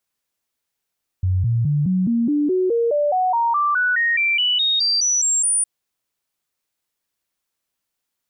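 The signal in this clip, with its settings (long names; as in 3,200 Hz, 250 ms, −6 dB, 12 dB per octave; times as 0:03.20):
stepped sweep 92.5 Hz up, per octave 3, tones 21, 0.21 s, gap 0.00 s −15.5 dBFS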